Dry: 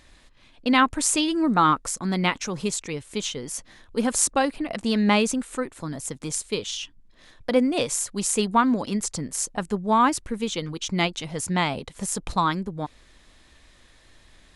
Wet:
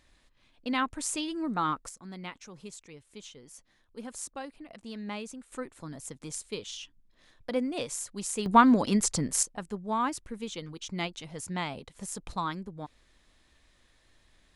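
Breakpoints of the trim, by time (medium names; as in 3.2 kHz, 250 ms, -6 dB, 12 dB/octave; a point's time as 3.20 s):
-10.5 dB
from 1.89 s -18 dB
from 5.52 s -9.5 dB
from 8.46 s +1 dB
from 9.43 s -10 dB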